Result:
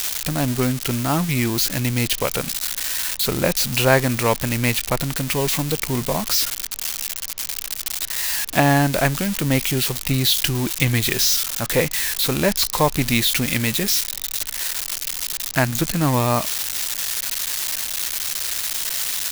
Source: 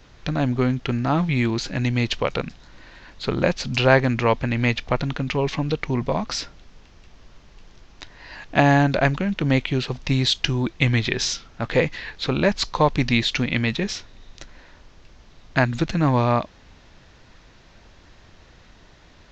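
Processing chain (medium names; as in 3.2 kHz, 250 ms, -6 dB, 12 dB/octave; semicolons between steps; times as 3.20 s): zero-crossing glitches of -12.5 dBFS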